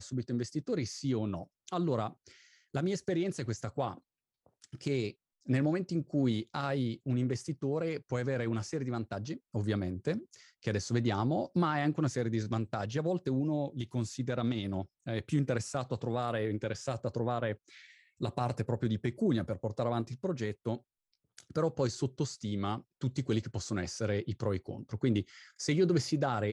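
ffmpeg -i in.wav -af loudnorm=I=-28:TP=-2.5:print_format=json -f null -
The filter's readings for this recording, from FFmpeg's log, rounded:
"input_i" : "-33.9",
"input_tp" : "-17.1",
"input_lra" : "3.0",
"input_thresh" : "-44.2",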